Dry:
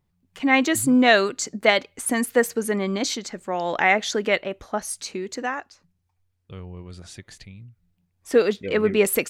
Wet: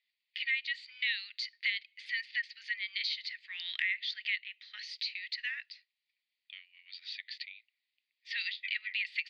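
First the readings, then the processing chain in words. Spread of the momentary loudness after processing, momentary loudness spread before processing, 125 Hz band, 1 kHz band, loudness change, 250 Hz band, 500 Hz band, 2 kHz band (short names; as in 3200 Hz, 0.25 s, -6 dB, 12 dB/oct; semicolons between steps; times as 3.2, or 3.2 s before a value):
14 LU, 16 LU, under -40 dB, under -40 dB, -13.5 dB, under -40 dB, under -40 dB, -9.0 dB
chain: Chebyshev band-pass 1900–4700 Hz, order 4; compressor 4:1, threshold -40 dBFS, peak gain reduction 19 dB; gain +6.5 dB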